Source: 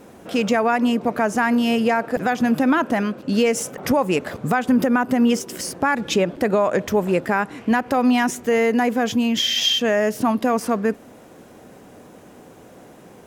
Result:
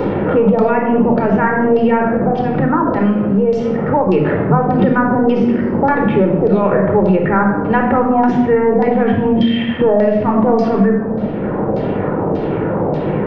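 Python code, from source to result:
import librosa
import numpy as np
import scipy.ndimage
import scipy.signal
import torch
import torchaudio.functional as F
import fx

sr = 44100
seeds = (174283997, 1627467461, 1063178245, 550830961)

y = fx.high_shelf(x, sr, hz=2400.0, db=-7.0)
y = fx.level_steps(y, sr, step_db=14, at=(2.07, 4.09))
y = fx.transient(y, sr, attack_db=-8, sustain_db=6)
y = fx.filter_lfo_lowpass(y, sr, shape='saw_down', hz=1.7, low_hz=600.0, high_hz=5000.0, q=2.2)
y = fx.spacing_loss(y, sr, db_at_10k=39)
y = fx.room_shoebox(y, sr, seeds[0], volume_m3=2400.0, walls='furnished', distance_m=4.4)
y = fx.band_squash(y, sr, depth_pct=100)
y = y * 10.0 ** (4.5 / 20.0)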